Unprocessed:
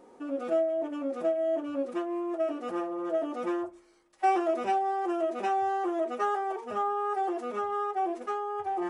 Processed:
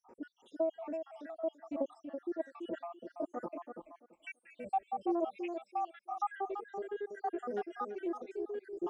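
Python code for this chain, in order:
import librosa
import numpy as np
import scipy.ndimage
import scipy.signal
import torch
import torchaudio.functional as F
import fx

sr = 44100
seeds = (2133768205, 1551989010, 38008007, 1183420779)

p1 = fx.spec_dropout(x, sr, seeds[0], share_pct=81)
p2 = fx.high_shelf(p1, sr, hz=6800.0, db=-9.5)
p3 = fx.fixed_phaser(p2, sr, hz=1400.0, stages=6, at=(3.46, 4.97))
p4 = p3 + fx.echo_tape(p3, sr, ms=333, feedback_pct=21, wet_db=-5, lp_hz=1000.0, drive_db=21.0, wow_cents=27, dry=0)
p5 = fx.dynamic_eq(p4, sr, hz=1300.0, q=1.9, threshold_db=-43.0, ratio=4.0, max_db=-3)
p6 = fx.doppler_dist(p5, sr, depth_ms=0.11)
y = p6 * librosa.db_to_amplitude(-1.0)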